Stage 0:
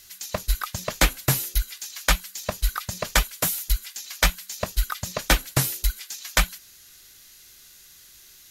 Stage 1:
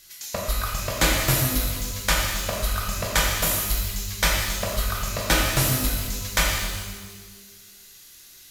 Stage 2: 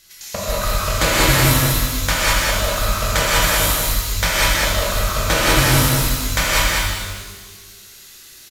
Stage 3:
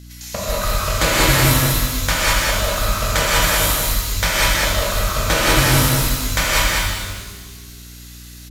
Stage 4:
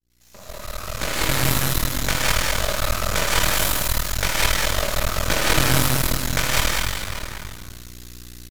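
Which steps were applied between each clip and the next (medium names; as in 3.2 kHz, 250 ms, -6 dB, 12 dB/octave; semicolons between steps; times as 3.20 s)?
pitch-shifted reverb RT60 1.4 s, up +12 st, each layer -8 dB, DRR -3 dB; trim -3 dB
treble shelf 10 kHz -5.5 dB; delay 195 ms -4.5 dB; gated-style reverb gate 220 ms rising, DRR -4 dB; trim +1.5 dB
hum 60 Hz, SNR 21 dB
fade-in on the opening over 1.86 s; echo from a far wall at 100 m, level -10 dB; half-wave rectifier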